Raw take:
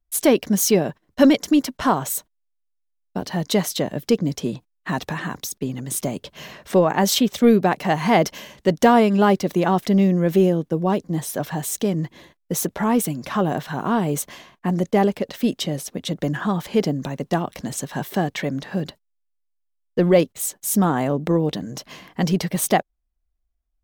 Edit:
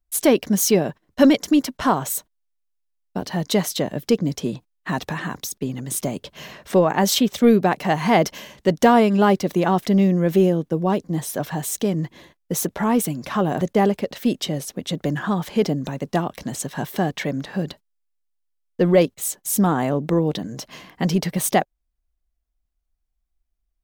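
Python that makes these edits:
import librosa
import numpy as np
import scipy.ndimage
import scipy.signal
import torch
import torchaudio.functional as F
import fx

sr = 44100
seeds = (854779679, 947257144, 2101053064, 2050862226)

y = fx.edit(x, sr, fx.cut(start_s=13.61, length_s=1.18), tone=tone)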